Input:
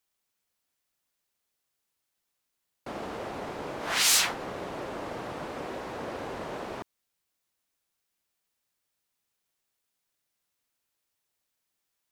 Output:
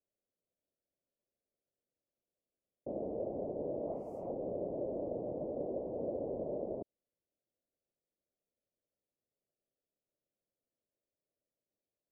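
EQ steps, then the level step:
elliptic low-pass filter 600 Hz, stop band 60 dB
low-shelf EQ 400 Hz −11.5 dB
+6.5 dB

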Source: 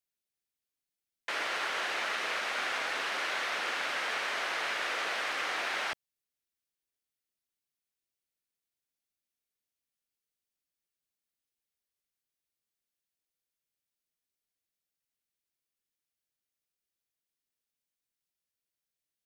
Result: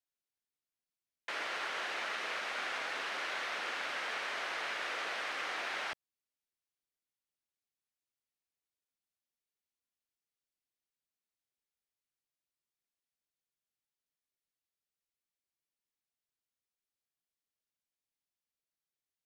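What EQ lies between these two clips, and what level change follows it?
high-shelf EQ 10,000 Hz −7 dB
−4.5 dB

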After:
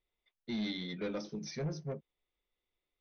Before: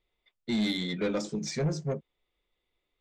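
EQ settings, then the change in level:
linear-phase brick-wall low-pass 6,300 Hz
−8.0 dB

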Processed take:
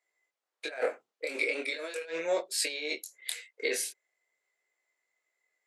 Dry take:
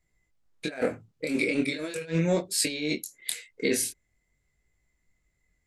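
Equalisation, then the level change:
high-pass filter 470 Hz 24 dB per octave
high-shelf EQ 5,400 Hz −7 dB
0.0 dB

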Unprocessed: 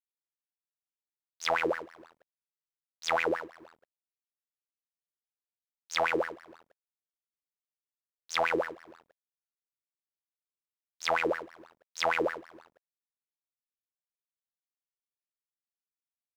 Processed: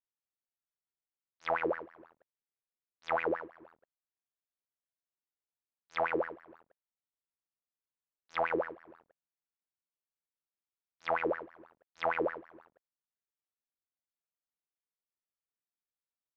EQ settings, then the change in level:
low-pass filter 1,800 Hz 12 dB per octave
−2.5 dB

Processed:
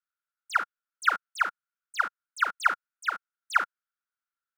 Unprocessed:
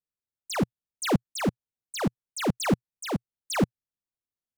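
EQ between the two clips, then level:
high-pass with resonance 1,400 Hz, resonance Q 11
high-shelf EQ 2,400 Hz −8 dB
high-shelf EQ 8,400 Hz −4.5 dB
0.0 dB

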